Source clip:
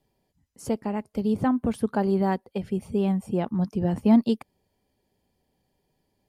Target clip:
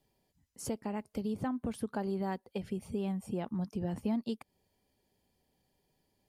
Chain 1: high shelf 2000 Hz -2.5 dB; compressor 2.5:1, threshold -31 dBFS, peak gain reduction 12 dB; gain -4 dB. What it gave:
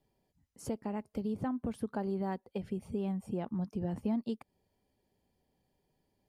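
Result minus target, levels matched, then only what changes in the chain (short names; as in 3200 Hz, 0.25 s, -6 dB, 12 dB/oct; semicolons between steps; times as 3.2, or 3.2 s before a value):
4000 Hz band -5.0 dB
change: high shelf 2000 Hz +4.5 dB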